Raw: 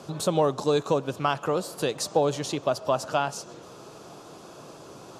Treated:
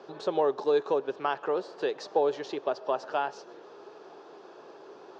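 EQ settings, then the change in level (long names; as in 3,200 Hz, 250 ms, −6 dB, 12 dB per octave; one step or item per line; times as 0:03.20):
high-frequency loss of the air 69 metres
loudspeaker in its box 320–5,500 Hz, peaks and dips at 400 Hz +8 dB, 850 Hz +6 dB, 1,700 Hz +8 dB
parametric band 410 Hz +3 dB 0.85 octaves
−7.0 dB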